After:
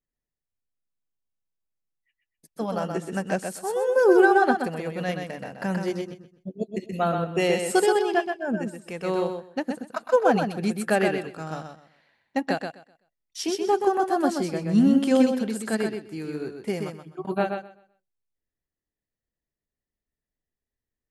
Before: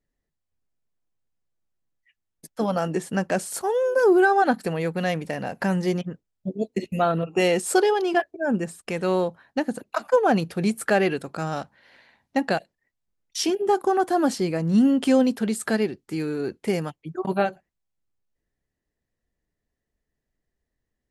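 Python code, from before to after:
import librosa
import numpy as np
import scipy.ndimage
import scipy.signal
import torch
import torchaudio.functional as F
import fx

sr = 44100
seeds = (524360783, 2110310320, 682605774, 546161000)

p1 = x + fx.echo_feedback(x, sr, ms=127, feedback_pct=28, wet_db=-4, dry=0)
y = fx.upward_expand(p1, sr, threshold_db=-35.0, expansion=1.5)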